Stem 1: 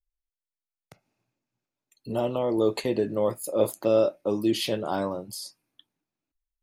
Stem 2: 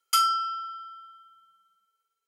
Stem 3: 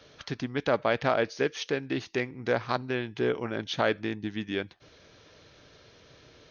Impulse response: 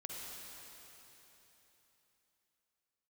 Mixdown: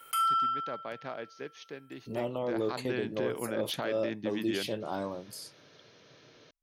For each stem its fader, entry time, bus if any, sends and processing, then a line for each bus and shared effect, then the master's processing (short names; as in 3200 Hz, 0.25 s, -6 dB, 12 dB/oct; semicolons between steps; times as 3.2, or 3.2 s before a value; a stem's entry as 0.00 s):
-7.0 dB, 0.00 s, no send, dry
-3.0 dB, 0.00 s, no send, band shelf 5100 Hz -15.5 dB 1.1 oct; fast leveller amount 50%; auto duck -16 dB, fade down 0.45 s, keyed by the first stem
2.42 s -14.5 dB -> 2.89 s -2 dB, 0.00 s, no send, HPF 120 Hz 24 dB/oct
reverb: off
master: limiter -21.5 dBFS, peak gain reduction 9 dB